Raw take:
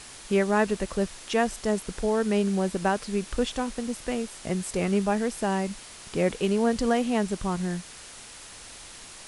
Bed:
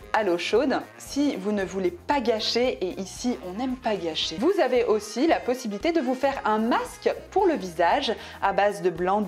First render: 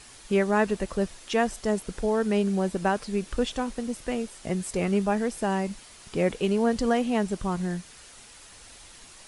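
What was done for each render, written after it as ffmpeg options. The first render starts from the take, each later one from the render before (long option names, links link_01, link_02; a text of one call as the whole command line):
ffmpeg -i in.wav -af "afftdn=noise_reduction=6:noise_floor=-45" out.wav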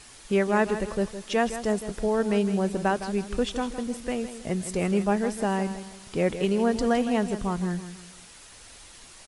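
ffmpeg -i in.wav -af "aecho=1:1:161|322|483|644:0.266|0.0958|0.0345|0.0124" out.wav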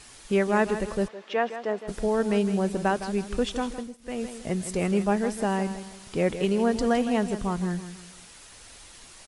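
ffmpeg -i in.wav -filter_complex "[0:a]asplit=3[link_01][link_02][link_03];[link_01]afade=type=out:start_time=1.07:duration=0.02[link_04];[link_02]highpass=360,lowpass=2700,afade=type=in:start_time=1.07:duration=0.02,afade=type=out:start_time=1.87:duration=0.02[link_05];[link_03]afade=type=in:start_time=1.87:duration=0.02[link_06];[link_04][link_05][link_06]amix=inputs=3:normalize=0,asplit=3[link_07][link_08][link_09];[link_07]atrim=end=3.97,asetpts=PTS-STARTPTS,afade=type=out:start_time=3.72:duration=0.25:silence=0.0891251[link_10];[link_08]atrim=start=3.97:end=3.98,asetpts=PTS-STARTPTS,volume=-21dB[link_11];[link_09]atrim=start=3.98,asetpts=PTS-STARTPTS,afade=type=in:duration=0.25:silence=0.0891251[link_12];[link_10][link_11][link_12]concat=n=3:v=0:a=1" out.wav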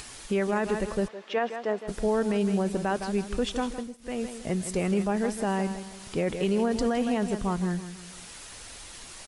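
ffmpeg -i in.wav -af "acompressor=mode=upward:threshold=-37dB:ratio=2.5,alimiter=limit=-17dB:level=0:latency=1:release=20" out.wav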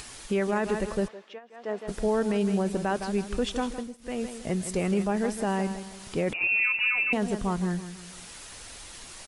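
ffmpeg -i in.wav -filter_complex "[0:a]asettb=1/sr,asplit=3[link_01][link_02][link_03];[link_01]atrim=end=6.334[link_04];[link_02]atrim=start=6.33:end=7.13,asetpts=PTS-STARTPTS,afade=type=in:duration=0.004:curve=qsin,afade=type=out:start_time=0.796:duration=0.004:curve=qsin,lowpass=frequency=2500:width_type=q:width=0.5098,lowpass=frequency=2500:width_type=q:width=0.6013,lowpass=frequency=2500:width_type=q:width=0.9,lowpass=frequency=2500:width_type=q:width=2.563,afreqshift=-2900[link_05];[link_03]atrim=start=7.126[link_06];[link_04][link_05]acrossfade=duration=0.004:curve1=hsin:curve2=qsin[link_07];[link_07][link_06]acrossfade=duration=0.004:curve1=qsin:curve2=hsin,asplit=3[link_08][link_09][link_10];[link_08]atrim=end=1.41,asetpts=PTS-STARTPTS,afade=type=out:start_time=1.05:duration=0.36:silence=0.0668344[link_11];[link_09]atrim=start=1.41:end=1.48,asetpts=PTS-STARTPTS,volume=-23.5dB[link_12];[link_10]atrim=start=1.48,asetpts=PTS-STARTPTS,afade=type=in:duration=0.36:silence=0.0668344[link_13];[link_11][link_12][link_13]concat=n=3:v=0:a=1" out.wav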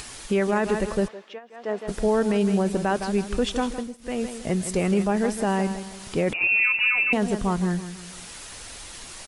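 ffmpeg -i in.wav -af "volume=4dB" out.wav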